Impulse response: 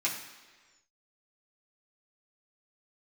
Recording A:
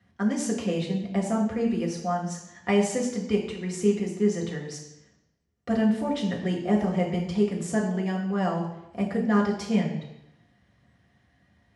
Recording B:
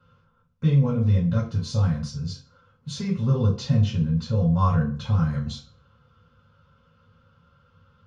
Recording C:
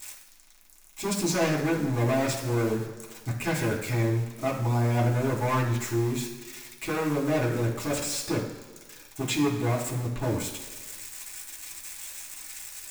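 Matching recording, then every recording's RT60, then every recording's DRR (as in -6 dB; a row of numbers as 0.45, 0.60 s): C; 0.85, 0.45, 1.4 s; -2.0, -8.0, -6.0 dB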